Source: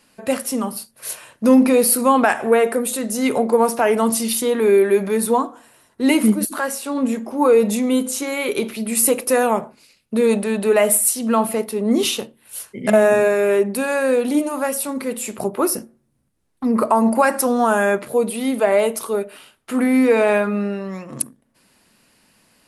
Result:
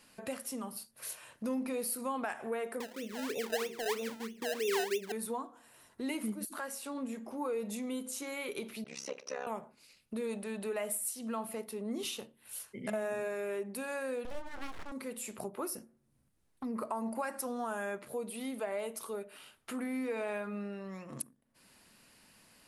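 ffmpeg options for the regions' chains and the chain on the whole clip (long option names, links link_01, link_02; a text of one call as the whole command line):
ffmpeg -i in.wav -filter_complex "[0:a]asettb=1/sr,asplit=3[link_01][link_02][link_03];[link_01]atrim=end=2.804[link_04];[link_02]atrim=start=2.8:end=5.12,asetpts=PTS-STARTPTS,afade=type=in:duration=0.004:curve=qsin,afade=type=out:start_time=2.316:duration=0.004:curve=qsin,lowpass=frequency=430:width_type=q:width=3.8,acrusher=samples=27:mix=1:aa=0.000001:lfo=1:lforange=27:lforate=3.1,flanger=delay=4.4:depth=7.2:regen=-77:speed=1.4:shape=sinusoidal[link_05];[link_03]atrim=start=5.116[link_06];[link_04][link_05]acrossfade=duration=0.004:curve1=hsin:curve2=qsin[link_07];[link_07][link_06]acrossfade=duration=0.004:curve1=qsin:curve2=hsin,asettb=1/sr,asplit=3[link_08][link_09][link_10];[link_08]atrim=end=8.844[link_11];[link_09]atrim=start=8.84:end=9.47,asetpts=PTS-STARTPTS,afade=type=in:duration=0.004:curve=qsin,afade=type=out:start_time=0.626:duration=0.004:curve=qsin,lowpass=frequency=5900:width_type=q:width=12,acrossover=split=320 3900:gain=0.112 1 0.0891[link_12][link_13][link_14];[link_12][link_13][link_14]amix=inputs=3:normalize=0,tremolo=f=67:d=1[link_15];[link_10]atrim=start=9.466[link_16];[link_11][link_15]acrossfade=duration=0.004:curve1=hsin:curve2=qsin[link_17];[link_17][link_16]acrossfade=duration=0.004:curve1=qsin:curve2=hsin,asettb=1/sr,asplit=3[link_18][link_19][link_20];[link_18]atrim=end=14.254[link_21];[link_19]atrim=start=14.25:end=14.92,asetpts=PTS-STARTPTS,afade=type=in:duration=0.004:curve=qsin,afade=type=out:start_time=0.666:duration=0.004:curve=qsin,aeval=exprs='abs(val(0))':channel_layout=same,adynamicsmooth=sensitivity=7:basefreq=630[link_22];[link_20]atrim=start=14.916[link_23];[link_21][link_22]acrossfade=duration=0.004:curve1=hsin:curve2=qsin[link_24];[link_24][link_23]acrossfade=duration=0.004:curve1=qsin:curve2=hsin,equalizer=frequency=320:width_type=o:width=2.6:gain=-2.5,acompressor=threshold=-43dB:ratio=2,volume=-4dB" out.wav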